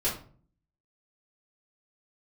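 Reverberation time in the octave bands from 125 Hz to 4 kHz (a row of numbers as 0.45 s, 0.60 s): 0.70 s, 0.65 s, 0.50 s, 0.40 s, 0.35 s, 0.30 s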